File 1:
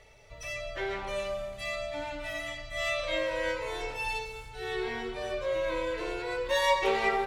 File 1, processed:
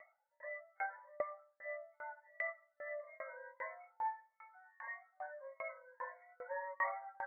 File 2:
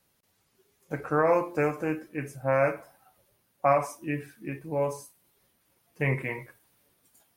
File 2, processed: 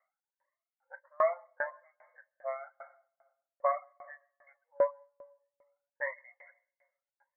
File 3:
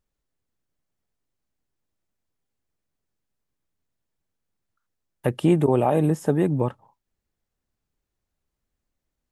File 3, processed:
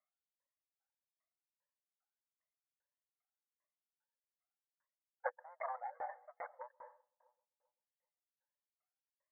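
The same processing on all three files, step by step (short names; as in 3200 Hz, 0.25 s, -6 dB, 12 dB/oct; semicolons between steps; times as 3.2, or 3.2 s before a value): moving spectral ripple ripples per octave 1.2, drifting +1.6 Hz, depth 20 dB; soft clip -14 dBFS; reverb removal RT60 1.6 s; added harmonics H 3 -19 dB, 4 -34 dB, 6 -31 dB, 8 -43 dB, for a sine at -13.5 dBFS; brick-wall FIR band-pass 510–2200 Hz; on a send: dark delay 0.13 s, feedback 64%, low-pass 880 Hz, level -22 dB; on the sum: plate-style reverb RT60 0.98 s, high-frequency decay 0.85×, pre-delay 0.12 s, DRR 17.5 dB; dB-ramp tremolo decaying 2.5 Hz, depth 33 dB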